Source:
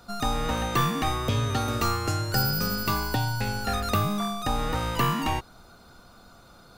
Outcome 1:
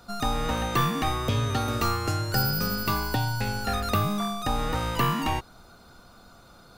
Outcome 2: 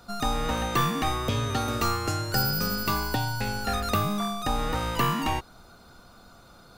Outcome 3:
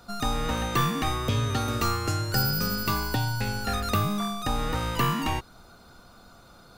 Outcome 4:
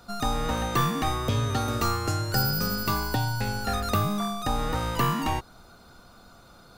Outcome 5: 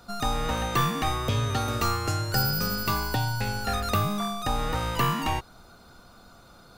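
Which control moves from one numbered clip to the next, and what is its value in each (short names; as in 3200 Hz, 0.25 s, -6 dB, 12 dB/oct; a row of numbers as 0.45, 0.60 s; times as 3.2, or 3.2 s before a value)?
dynamic EQ, frequency: 7100, 110, 720, 2600, 270 Hz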